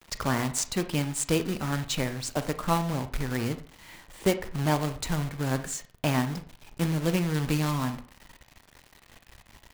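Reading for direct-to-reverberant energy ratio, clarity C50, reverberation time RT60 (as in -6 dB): 10.0 dB, 13.5 dB, 0.45 s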